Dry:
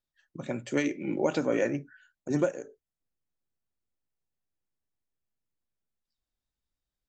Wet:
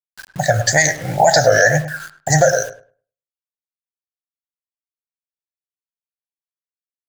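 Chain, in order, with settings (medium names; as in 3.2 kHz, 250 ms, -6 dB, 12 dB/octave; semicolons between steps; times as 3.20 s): FFT filter 130 Hz 0 dB, 240 Hz -28 dB, 380 Hz -28 dB, 720 Hz +9 dB, 1.1 kHz -30 dB, 1.7 kHz +9 dB, 2.5 kHz -27 dB, 4.4 kHz +9 dB, 6.3 kHz +8 dB, 9 kHz -4 dB; wow and flutter 140 cents; word length cut 10-bit, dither none; filtered feedback delay 104 ms, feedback 20%, low-pass 1.7 kHz, level -11.5 dB; loudness maximiser +25.5 dB; trim -1 dB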